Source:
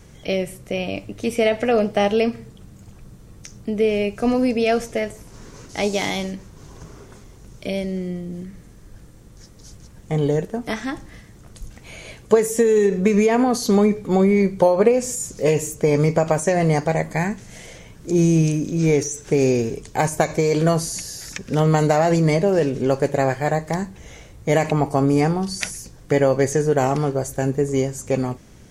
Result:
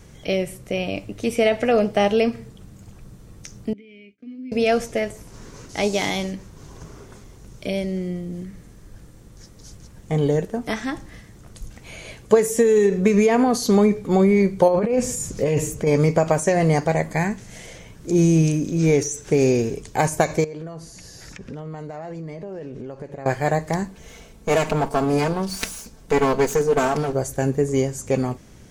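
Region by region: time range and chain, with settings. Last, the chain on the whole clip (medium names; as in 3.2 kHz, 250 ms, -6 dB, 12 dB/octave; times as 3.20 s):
3.73–4.52 s: expander -24 dBFS + compression 8:1, threshold -27 dBFS + vowel filter i
14.68–15.87 s: tone controls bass +4 dB, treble -5 dB + compressor with a negative ratio -19 dBFS + tape noise reduction on one side only encoder only
20.44–23.26 s: compression 12:1, threshold -30 dBFS + low-pass 2.2 kHz 6 dB/octave
23.88–27.13 s: comb filter that takes the minimum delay 4.5 ms + band-stop 1.9 kHz
whole clip: none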